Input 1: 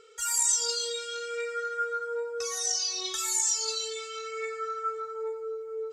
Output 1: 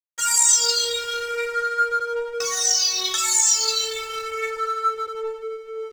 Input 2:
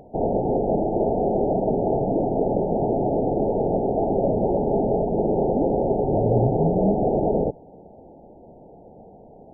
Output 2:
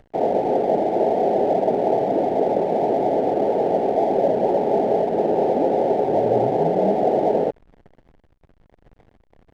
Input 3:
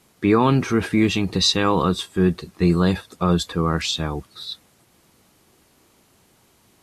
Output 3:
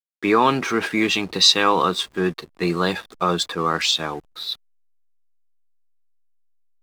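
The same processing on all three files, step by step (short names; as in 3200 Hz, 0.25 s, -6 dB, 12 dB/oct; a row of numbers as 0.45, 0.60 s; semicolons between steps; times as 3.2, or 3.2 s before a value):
weighting filter A; backlash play -38.5 dBFS; match loudness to -20 LUFS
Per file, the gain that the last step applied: +10.0, +6.5, +4.0 dB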